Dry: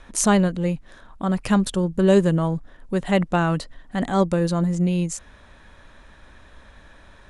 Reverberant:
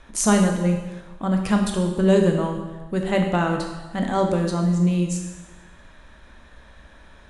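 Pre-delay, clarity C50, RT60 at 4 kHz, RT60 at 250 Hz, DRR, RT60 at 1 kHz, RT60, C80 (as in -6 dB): 7 ms, 5.0 dB, 1.1 s, 1.2 s, 2.5 dB, 1.2 s, 1.2 s, 7.0 dB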